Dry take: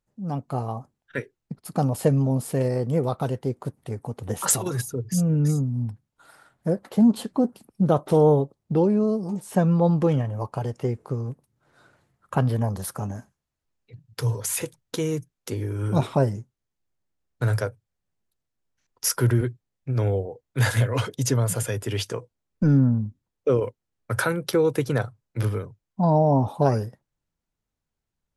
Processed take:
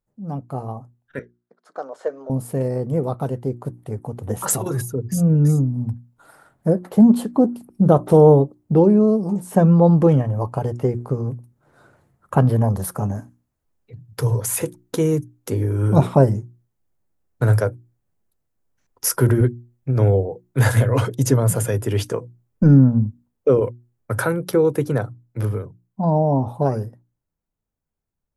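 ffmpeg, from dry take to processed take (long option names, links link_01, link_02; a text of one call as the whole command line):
ffmpeg -i in.wav -filter_complex "[0:a]asettb=1/sr,asplit=3[link_01][link_02][link_03];[link_01]atrim=end=1.194[link_04];[link_02]atrim=start=1.19:end=2.3,asetpts=PTS-STARTPTS,afade=type=in:duration=0.004:curve=qsin,afade=type=out:start_time=1.106:duration=0.004:curve=qsin,highpass=frequency=460:width=0.5412,highpass=frequency=460:width=1.3066,equalizer=frequency=820:width_type=q:width=4:gain=-7,equalizer=frequency=1500:width_type=q:width=4:gain=7,equalizer=frequency=2600:width_type=q:width=4:gain=-10,equalizer=frequency=4800:width_type=q:width=4:gain=-6,lowpass=frequency=5700:width=0.5412,lowpass=frequency=5700:width=1.3066[link_05];[link_03]atrim=start=2.296[link_06];[link_04][link_05]acrossfade=duration=0.004:curve1=hsin:curve2=qsin[link_07];[link_07][link_06]acrossfade=duration=0.004:curve1=qsin:curve2=hsin,equalizer=frequency=3800:width=0.47:gain=-10,bandreject=frequency=60:width_type=h:width=6,bandreject=frequency=120:width_type=h:width=6,bandreject=frequency=180:width_type=h:width=6,bandreject=frequency=240:width_type=h:width=6,bandreject=frequency=300:width_type=h:width=6,bandreject=frequency=360:width_type=h:width=6,dynaudnorm=framelen=280:gausssize=31:maxgain=8.5dB,volume=1dB" out.wav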